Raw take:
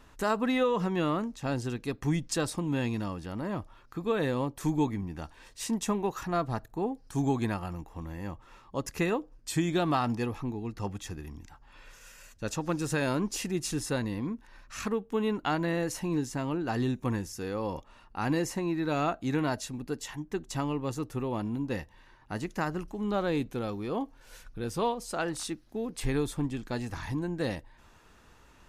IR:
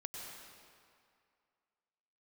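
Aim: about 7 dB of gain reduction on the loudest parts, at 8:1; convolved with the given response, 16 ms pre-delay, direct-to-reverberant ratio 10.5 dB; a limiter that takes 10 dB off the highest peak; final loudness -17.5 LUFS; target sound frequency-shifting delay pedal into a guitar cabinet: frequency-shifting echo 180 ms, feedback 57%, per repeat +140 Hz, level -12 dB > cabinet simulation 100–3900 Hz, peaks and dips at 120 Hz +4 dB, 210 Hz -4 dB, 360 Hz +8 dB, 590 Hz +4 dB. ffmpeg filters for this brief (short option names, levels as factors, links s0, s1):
-filter_complex "[0:a]acompressor=threshold=0.0316:ratio=8,alimiter=level_in=2.11:limit=0.0631:level=0:latency=1,volume=0.473,asplit=2[s0][s1];[1:a]atrim=start_sample=2205,adelay=16[s2];[s1][s2]afir=irnorm=-1:irlink=0,volume=0.355[s3];[s0][s3]amix=inputs=2:normalize=0,asplit=7[s4][s5][s6][s7][s8][s9][s10];[s5]adelay=180,afreqshift=140,volume=0.251[s11];[s6]adelay=360,afreqshift=280,volume=0.143[s12];[s7]adelay=540,afreqshift=420,volume=0.0813[s13];[s8]adelay=720,afreqshift=560,volume=0.0468[s14];[s9]adelay=900,afreqshift=700,volume=0.0266[s15];[s10]adelay=1080,afreqshift=840,volume=0.0151[s16];[s4][s11][s12][s13][s14][s15][s16]amix=inputs=7:normalize=0,highpass=100,equalizer=f=120:t=q:w=4:g=4,equalizer=f=210:t=q:w=4:g=-4,equalizer=f=360:t=q:w=4:g=8,equalizer=f=590:t=q:w=4:g=4,lowpass=f=3900:w=0.5412,lowpass=f=3900:w=1.3066,volume=10.6"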